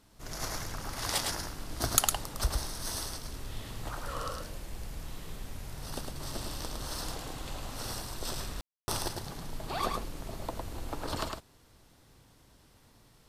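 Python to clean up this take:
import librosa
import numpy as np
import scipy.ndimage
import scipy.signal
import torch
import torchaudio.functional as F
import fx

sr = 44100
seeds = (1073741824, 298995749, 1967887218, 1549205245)

y = fx.fix_ambience(x, sr, seeds[0], print_start_s=12.34, print_end_s=12.84, start_s=8.61, end_s=8.88)
y = fx.fix_echo_inverse(y, sr, delay_ms=107, level_db=-4.0)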